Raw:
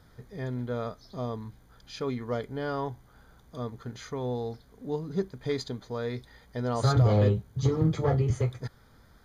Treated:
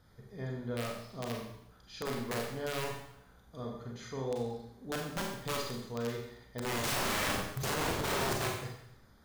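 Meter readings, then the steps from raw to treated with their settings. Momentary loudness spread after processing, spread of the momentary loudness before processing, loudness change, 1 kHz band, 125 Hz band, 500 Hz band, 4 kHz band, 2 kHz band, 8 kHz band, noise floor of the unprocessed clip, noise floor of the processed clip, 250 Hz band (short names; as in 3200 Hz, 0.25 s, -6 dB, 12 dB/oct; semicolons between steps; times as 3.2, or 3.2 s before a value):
14 LU, 17 LU, -6.0 dB, -1.0 dB, -13.5 dB, -6.0 dB, +4.5 dB, +5.5 dB, +8.0 dB, -58 dBFS, -61 dBFS, -7.0 dB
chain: wrapped overs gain 23.5 dB; Schroeder reverb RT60 0.75 s, combs from 30 ms, DRR -0.5 dB; gain -7 dB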